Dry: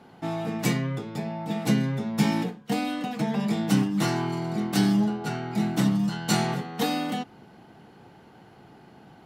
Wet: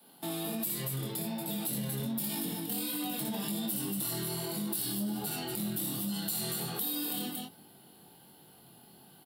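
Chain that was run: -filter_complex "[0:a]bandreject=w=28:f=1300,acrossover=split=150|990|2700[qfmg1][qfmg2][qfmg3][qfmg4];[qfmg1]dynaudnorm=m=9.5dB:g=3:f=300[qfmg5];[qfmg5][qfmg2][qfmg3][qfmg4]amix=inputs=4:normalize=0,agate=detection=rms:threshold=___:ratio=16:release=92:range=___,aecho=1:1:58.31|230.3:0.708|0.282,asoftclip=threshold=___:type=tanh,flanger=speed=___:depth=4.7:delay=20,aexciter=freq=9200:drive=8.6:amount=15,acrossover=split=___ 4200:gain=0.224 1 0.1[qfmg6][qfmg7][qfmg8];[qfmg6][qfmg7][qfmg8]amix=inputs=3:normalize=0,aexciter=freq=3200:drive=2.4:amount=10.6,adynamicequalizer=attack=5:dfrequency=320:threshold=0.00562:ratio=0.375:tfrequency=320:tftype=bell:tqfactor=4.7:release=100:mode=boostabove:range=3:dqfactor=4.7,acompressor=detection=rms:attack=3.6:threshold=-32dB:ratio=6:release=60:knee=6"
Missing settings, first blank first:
-40dB, -8dB, -13.5dB, 1.3, 160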